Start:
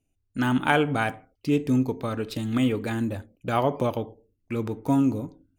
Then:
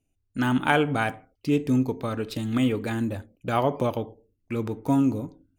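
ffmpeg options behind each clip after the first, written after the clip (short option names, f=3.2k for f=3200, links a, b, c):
-af anull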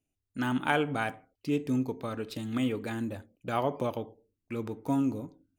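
-af "lowshelf=f=78:g=-9,volume=-5.5dB"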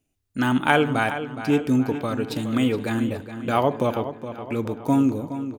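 -filter_complex "[0:a]asplit=2[a][b];[b]adelay=418,lowpass=f=4.9k:p=1,volume=-11dB,asplit=2[c][d];[d]adelay=418,lowpass=f=4.9k:p=1,volume=0.5,asplit=2[e][f];[f]adelay=418,lowpass=f=4.9k:p=1,volume=0.5,asplit=2[g][h];[h]adelay=418,lowpass=f=4.9k:p=1,volume=0.5,asplit=2[i][j];[j]adelay=418,lowpass=f=4.9k:p=1,volume=0.5[k];[a][c][e][g][i][k]amix=inputs=6:normalize=0,volume=8.5dB"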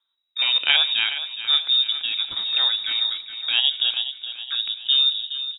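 -af "lowpass=f=3.3k:t=q:w=0.5098,lowpass=f=3.3k:t=q:w=0.6013,lowpass=f=3.3k:t=q:w=0.9,lowpass=f=3.3k:t=q:w=2.563,afreqshift=-3900"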